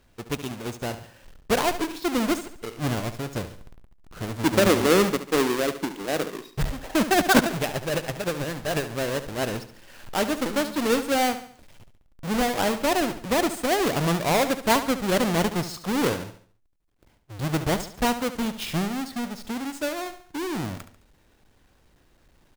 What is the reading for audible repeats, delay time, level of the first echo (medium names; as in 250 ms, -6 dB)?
4, 71 ms, -12.0 dB